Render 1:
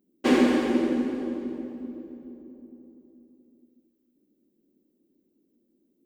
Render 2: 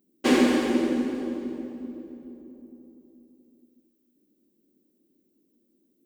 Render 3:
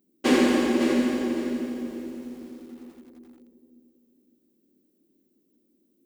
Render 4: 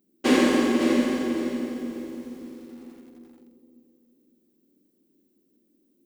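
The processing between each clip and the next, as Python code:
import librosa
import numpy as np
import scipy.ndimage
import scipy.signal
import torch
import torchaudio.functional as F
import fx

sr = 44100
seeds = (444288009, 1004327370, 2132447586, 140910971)

y1 = fx.high_shelf(x, sr, hz=3700.0, db=7.0)
y2 = fx.echo_feedback(y1, sr, ms=554, feedback_pct=24, wet_db=-8)
y2 = fx.echo_crushed(y2, sr, ms=85, feedback_pct=80, bits=8, wet_db=-11.5)
y3 = fx.room_flutter(y2, sr, wall_m=7.9, rt60_s=0.39)
y3 = fx.rev_schroeder(y3, sr, rt60_s=2.7, comb_ms=32, drr_db=19.0)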